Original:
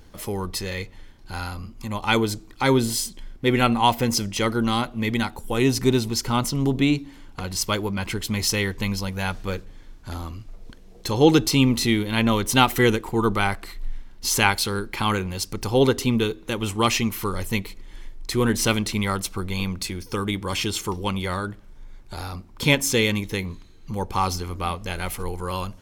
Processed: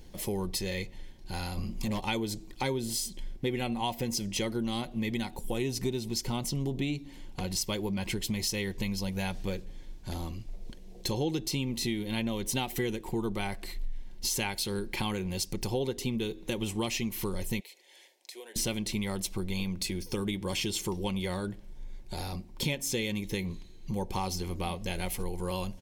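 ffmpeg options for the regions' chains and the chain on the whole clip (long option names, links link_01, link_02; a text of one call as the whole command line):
ffmpeg -i in.wav -filter_complex "[0:a]asettb=1/sr,asplit=3[link_01][link_02][link_03];[link_01]atrim=end=1.574[link_04];[link_02]atrim=start=1.57:end=2,asetpts=PTS-STARTPTS,afade=type=in:duration=0.004:curve=qsin,afade=type=out:start_time=0.426:duration=0.004:curve=qsin,bandreject=frequency=60:width_type=h:width=6,bandreject=frequency=120:width_type=h:width=6,bandreject=frequency=180:width_type=h:width=6,bandreject=frequency=240:width_type=h:width=6,bandreject=frequency=300:width_type=h:width=6,bandreject=frequency=360:width_type=h:width=6,bandreject=frequency=420:width_type=h:width=6,acontrast=66,asoftclip=type=hard:threshold=-22dB[link_05];[link_03]atrim=start=1.996[link_06];[link_04][link_05]acrossfade=duration=0.004:curve1=hsin:curve2=qsin[link_07];[link_07][link_06]acrossfade=duration=0.004:curve1=qsin:curve2=hsin,asettb=1/sr,asplit=3[link_08][link_09][link_10];[link_08]atrim=end=17.604[link_11];[link_09]atrim=start=17.6:end=18.56,asetpts=PTS-STARTPTS,afade=type=in:duration=0.004:curve=qsin,afade=type=out:start_time=0.956:duration=0.004:curve=qsin,highpass=frequency=520:width=0.5412,highpass=frequency=520:width=1.3066,equalizer=frequency=1200:width_type=o:width=0.48:gain=-12.5,acompressor=threshold=-41dB:ratio=6:attack=3.2:release=140:knee=1:detection=peak[link_12];[link_10]atrim=start=18.556[link_13];[link_11][link_12]acrossfade=duration=0.004:curve1=hsin:curve2=qsin[link_14];[link_14][link_13]acrossfade=duration=0.004:curve1=qsin:curve2=hsin,equalizer=frequency=1300:width_type=o:width=0.63:gain=-13,aecho=1:1:5.5:0.3,acompressor=threshold=-27dB:ratio=6,volume=-1.5dB" out.wav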